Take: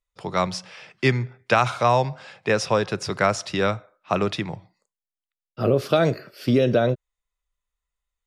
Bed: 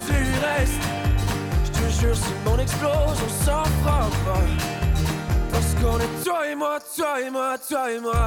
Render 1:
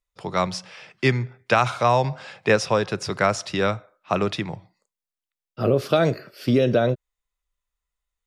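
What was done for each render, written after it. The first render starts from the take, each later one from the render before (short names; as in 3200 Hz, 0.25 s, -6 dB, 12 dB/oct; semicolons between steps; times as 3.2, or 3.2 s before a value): 2.04–2.56 gain +3 dB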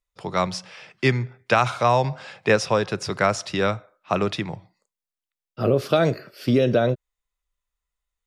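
nothing audible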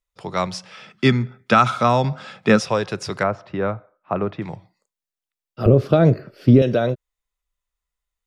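0.71–2.62 small resonant body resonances 210/1300/3400 Hz, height 12 dB, ringing for 35 ms; 3.23–4.42 LPF 1400 Hz; 5.66–6.62 tilt -3.5 dB/oct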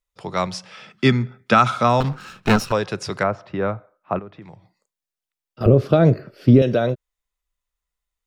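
2–2.72 minimum comb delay 0.73 ms; 4.19–5.61 compressor 2:1, threshold -46 dBFS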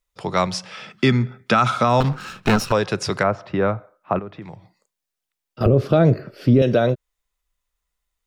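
in parallel at -3 dB: compressor, threshold -23 dBFS, peak gain reduction 15 dB; on the sum: limiter -6 dBFS, peak gain reduction 5 dB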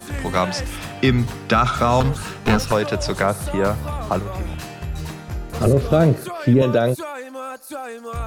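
add bed -7 dB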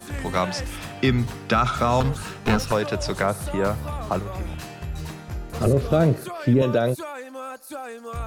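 gain -3.5 dB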